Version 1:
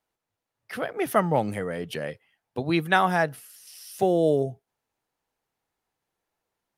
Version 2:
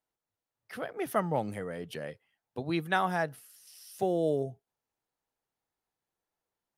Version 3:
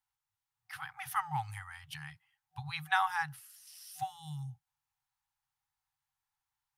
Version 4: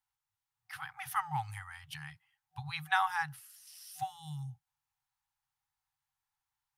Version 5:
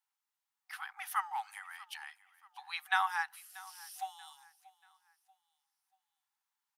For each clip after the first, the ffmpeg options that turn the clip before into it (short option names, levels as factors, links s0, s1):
-af "equalizer=f=2400:t=o:w=0.77:g=-2,volume=0.447"
-af "afftfilt=real='re*(1-between(b*sr/4096,160,750))':imag='im*(1-between(b*sr/4096,160,750))':win_size=4096:overlap=0.75"
-af anull
-af "highpass=f=750:w=0.5412,highpass=f=750:w=1.3066,aecho=1:1:635|1270|1905:0.0944|0.0349|0.0129"